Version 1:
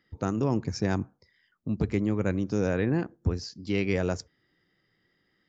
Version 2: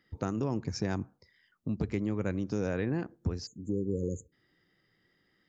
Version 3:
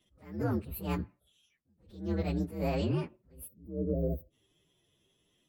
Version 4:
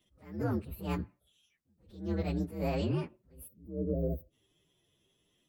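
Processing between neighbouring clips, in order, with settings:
spectral selection erased 3.46–4.32 s, 540–6300 Hz; compression 2:1, threshold -31 dBFS, peak gain reduction 6.5 dB
frequency axis rescaled in octaves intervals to 126%; attacks held to a fixed rise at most 120 dB/s; trim +3 dB
de-esser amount 85%; trim -1 dB

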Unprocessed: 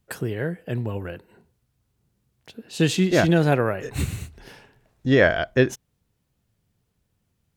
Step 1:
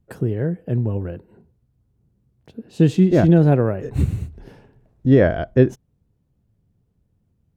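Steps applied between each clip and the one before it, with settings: tilt shelf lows +9.5 dB, about 850 Hz; trim -2 dB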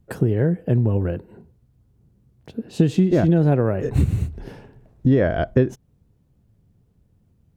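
compression 6:1, threshold -19 dBFS, peak gain reduction 11 dB; trim +5.5 dB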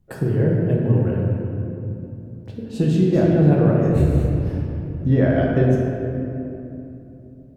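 simulated room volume 130 m³, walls hard, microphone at 0.62 m; trim -4.5 dB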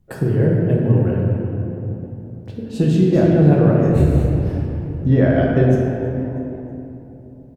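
frequency-shifting echo 320 ms, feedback 46%, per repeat +110 Hz, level -22 dB; trim +2.5 dB

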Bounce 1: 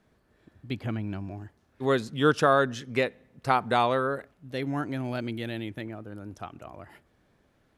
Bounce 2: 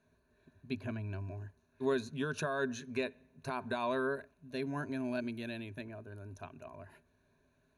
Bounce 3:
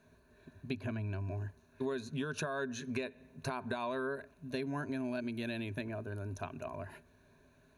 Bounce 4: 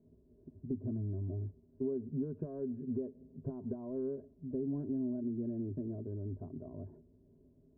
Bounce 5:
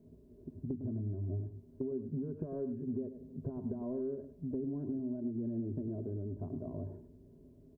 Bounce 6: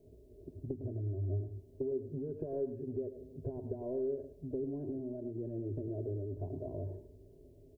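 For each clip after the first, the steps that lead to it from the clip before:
peak limiter -17.5 dBFS, peak gain reduction 9.5 dB; rippled EQ curve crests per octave 1.5, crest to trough 13 dB; trim -8.5 dB
compression 6:1, threshold -42 dBFS, peak gain reduction 13.5 dB; trim +7.5 dB
saturation -27.5 dBFS, distortion -22 dB; four-pole ladder low-pass 460 Hz, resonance 30%; trim +7.5 dB
compression, threshold -41 dBFS, peak gain reduction 10 dB; on a send: delay 104 ms -10 dB; on the sum: trim +6 dB
static phaser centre 500 Hz, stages 4; on a send at -18 dB: reverberation, pre-delay 76 ms; on the sum: trim +4.5 dB

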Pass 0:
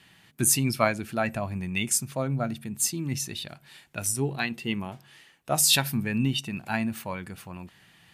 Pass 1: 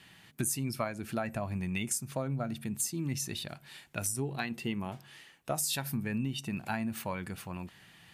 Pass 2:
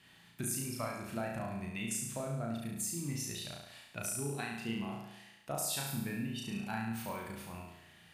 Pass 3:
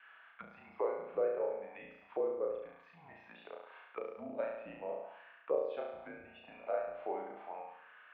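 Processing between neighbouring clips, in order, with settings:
dynamic bell 3.1 kHz, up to -5 dB, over -40 dBFS, Q 1; compression 6:1, threshold -30 dBFS, peak gain reduction 12.5 dB
flutter echo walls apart 6 m, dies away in 0.89 s; trim -7 dB
mistuned SSB -170 Hz 380–3300 Hz; auto-wah 540–1500 Hz, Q 2.6, down, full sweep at -43 dBFS; trim +10 dB

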